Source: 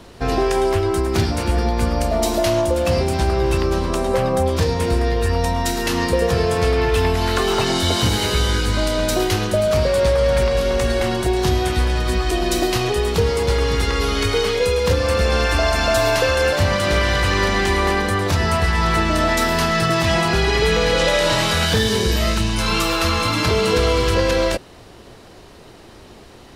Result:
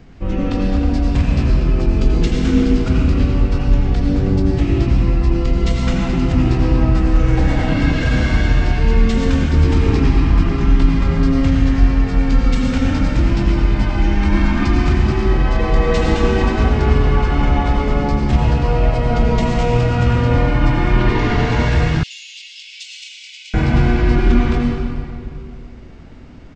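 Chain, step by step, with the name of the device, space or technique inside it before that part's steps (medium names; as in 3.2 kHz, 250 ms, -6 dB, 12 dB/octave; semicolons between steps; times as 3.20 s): monster voice (pitch shift -5.5 st; formant shift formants -5.5 st; bass shelf 240 Hz +9 dB; reverberation RT60 2.4 s, pre-delay 76 ms, DRR -1 dB); 22.03–23.54 s: steep high-pass 2.6 kHz 48 dB/octave; trim -6 dB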